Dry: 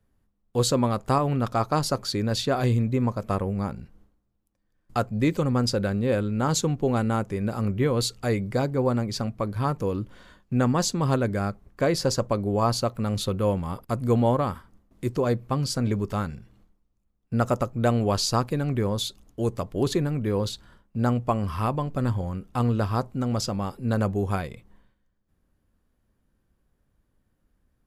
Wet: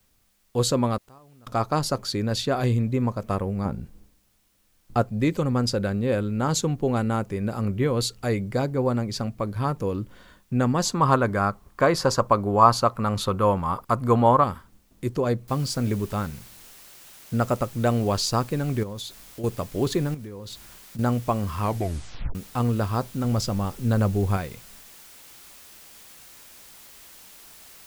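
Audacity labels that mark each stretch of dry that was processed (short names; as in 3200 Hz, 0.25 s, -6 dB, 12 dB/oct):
0.970000	1.470000	flipped gate shuts at -27 dBFS, range -29 dB
3.650000	5.020000	tilt shelf lows +5 dB, about 1300 Hz
10.850000	14.440000	bell 1100 Hz +12.5 dB 1.1 oct
15.480000	15.480000	noise floor step -68 dB -48 dB
18.830000	19.440000	compressor 3:1, threshold -33 dBFS
20.140000	20.990000	compressor 16:1, threshold -33 dBFS
21.600000	21.600000	tape stop 0.75 s
23.240000	24.370000	low shelf 100 Hz +9.5 dB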